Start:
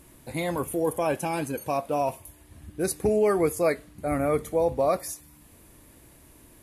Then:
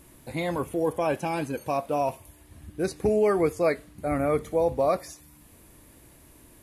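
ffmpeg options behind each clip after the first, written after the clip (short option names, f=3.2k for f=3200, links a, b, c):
-filter_complex "[0:a]acrossover=split=6300[a][b];[b]acompressor=threshold=-50dB:ratio=4:attack=1:release=60[c];[a][c]amix=inputs=2:normalize=0"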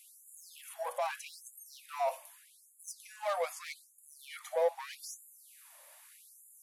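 -filter_complex "[0:a]acrossover=split=630[a][b];[b]asoftclip=type=tanh:threshold=-33dB[c];[a][c]amix=inputs=2:normalize=0,afftfilt=real='re*gte(b*sr/1024,490*pow(6800/490,0.5+0.5*sin(2*PI*0.81*pts/sr)))':imag='im*gte(b*sr/1024,490*pow(6800/490,0.5+0.5*sin(2*PI*0.81*pts/sr)))':win_size=1024:overlap=0.75"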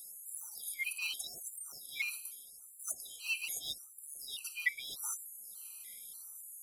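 -af "afftfilt=real='real(if(lt(b,272),68*(eq(floor(b/68),0)*3+eq(floor(b/68),1)*0+eq(floor(b/68),2)*1+eq(floor(b/68),3)*2)+mod(b,68),b),0)':imag='imag(if(lt(b,272),68*(eq(floor(b/68),0)*3+eq(floor(b/68),1)*0+eq(floor(b/68),2)*1+eq(floor(b/68),3)*2)+mod(b,68),b),0)':win_size=2048:overlap=0.75,crystalizer=i=3.5:c=0,afftfilt=real='re*gt(sin(2*PI*1.7*pts/sr)*(1-2*mod(floor(b*sr/1024/790),2)),0)':imag='im*gt(sin(2*PI*1.7*pts/sr)*(1-2*mod(floor(b*sr/1024/790),2)),0)':win_size=1024:overlap=0.75,volume=-2.5dB"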